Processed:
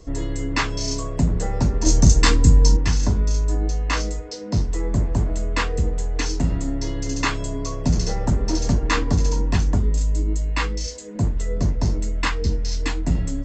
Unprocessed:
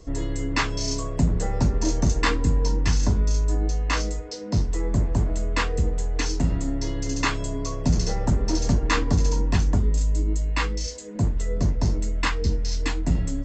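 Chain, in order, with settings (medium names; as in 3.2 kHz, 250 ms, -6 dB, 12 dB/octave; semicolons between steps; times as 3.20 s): 1.86–2.77 s: tone controls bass +7 dB, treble +11 dB; trim +1.5 dB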